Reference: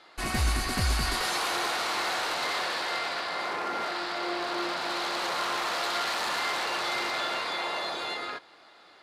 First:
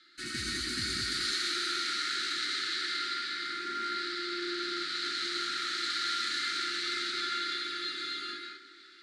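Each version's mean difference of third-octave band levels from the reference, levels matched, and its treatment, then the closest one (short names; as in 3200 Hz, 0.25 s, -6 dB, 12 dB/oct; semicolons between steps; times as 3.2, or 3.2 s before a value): 10.5 dB: Chebyshev band-stop 370–1300 Hz, order 5; speaker cabinet 170–9100 Hz, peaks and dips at 190 Hz -8 dB, 780 Hz -8 dB, 2600 Hz -6 dB, 4100 Hz +7 dB; delay with a stepping band-pass 0.321 s, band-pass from 330 Hz, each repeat 0.7 oct, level -10.5 dB; non-linear reverb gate 0.22 s rising, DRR 0.5 dB; gain -4.5 dB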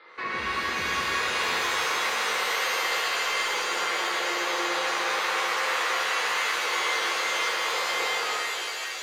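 6.5 dB: speaker cabinet 240–3800 Hz, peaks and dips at 270 Hz -8 dB, 470 Hz +10 dB, 720 Hz -10 dB, 1100 Hz +7 dB, 2000 Hz +8 dB, 3100 Hz -5 dB; compressor 2.5:1, threshold -32 dBFS, peak gain reduction 6.5 dB; stuck buffer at 1.43, samples 512, times 8; shimmer reverb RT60 3 s, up +7 st, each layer -2 dB, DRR -2 dB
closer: second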